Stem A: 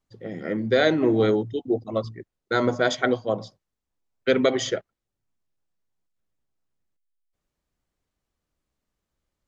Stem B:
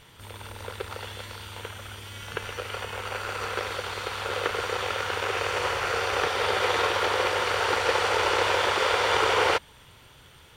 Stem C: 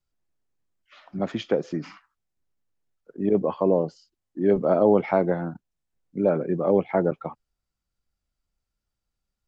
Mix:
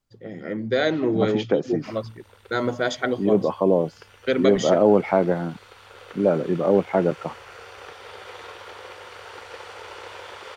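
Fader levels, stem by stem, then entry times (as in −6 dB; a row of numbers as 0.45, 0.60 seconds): −2.0, −15.5, +2.0 decibels; 0.00, 1.65, 0.00 seconds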